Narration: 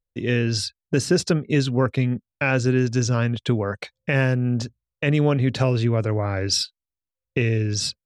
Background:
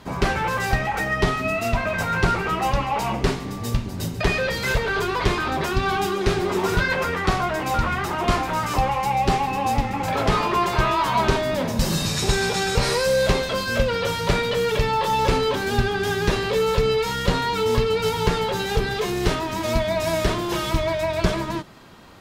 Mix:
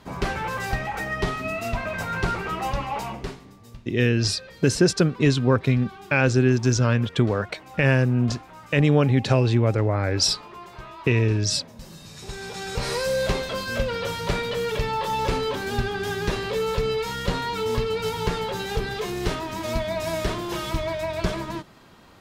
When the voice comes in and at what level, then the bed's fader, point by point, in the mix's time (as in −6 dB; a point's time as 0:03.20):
3.70 s, +1.0 dB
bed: 0:02.97 −5 dB
0:03.64 −20.5 dB
0:12.00 −20.5 dB
0:12.96 −4.5 dB